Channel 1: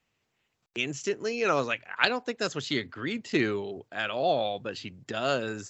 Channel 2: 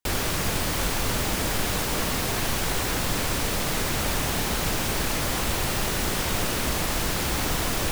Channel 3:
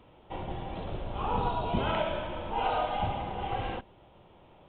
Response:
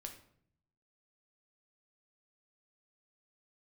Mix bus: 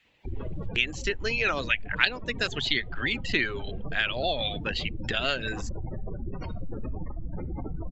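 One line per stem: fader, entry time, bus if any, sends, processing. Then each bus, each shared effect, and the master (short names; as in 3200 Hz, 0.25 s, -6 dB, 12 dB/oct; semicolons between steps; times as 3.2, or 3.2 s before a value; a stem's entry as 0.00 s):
+2.5 dB, 0.00 s, no send, reverb removal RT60 0.77 s; band shelf 2600 Hz +11.5 dB
-5.5 dB, 0.20 s, send -3 dB, spectral gate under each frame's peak -10 dB strong; bell 1700 Hz -6.5 dB 1.1 oct
-12.5 dB, 0.05 s, no send, reverb removal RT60 1.7 s; compressor 3:1, threshold -44 dBFS, peak gain reduction 14.5 dB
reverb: on, RT60 0.65 s, pre-delay 6 ms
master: compressor 2:1, threshold -28 dBFS, peak gain reduction 13 dB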